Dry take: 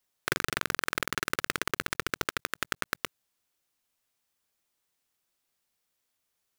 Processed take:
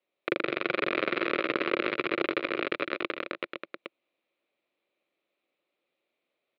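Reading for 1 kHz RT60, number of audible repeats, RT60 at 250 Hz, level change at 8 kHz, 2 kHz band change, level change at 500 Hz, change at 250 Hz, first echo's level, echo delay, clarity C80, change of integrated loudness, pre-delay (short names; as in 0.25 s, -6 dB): none, 5, none, under -30 dB, +1.0 dB, +10.0 dB, +9.0 dB, -13.0 dB, 0.119 s, none, +2.0 dB, none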